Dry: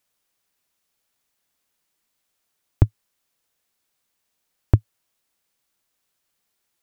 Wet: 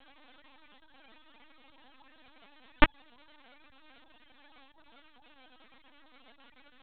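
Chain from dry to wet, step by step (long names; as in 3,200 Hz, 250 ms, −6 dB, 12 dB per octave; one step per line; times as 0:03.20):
three sine waves on the formant tracks
high-shelf EQ 2,000 Hz +3 dB
full-wave rectification
linear-prediction vocoder at 8 kHz pitch kept
level −6.5 dB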